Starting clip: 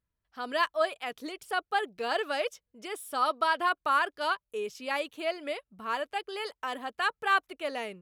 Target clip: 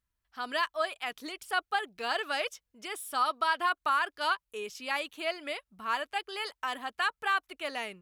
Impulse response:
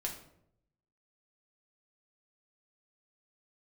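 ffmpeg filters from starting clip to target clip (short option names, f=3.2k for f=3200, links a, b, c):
-af "equalizer=f=125:t=o:w=1:g=-8,equalizer=f=250:t=o:w=1:g=-3,equalizer=f=500:t=o:w=1:g=-8,alimiter=limit=-20dB:level=0:latency=1:release=198,volume=2.5dB"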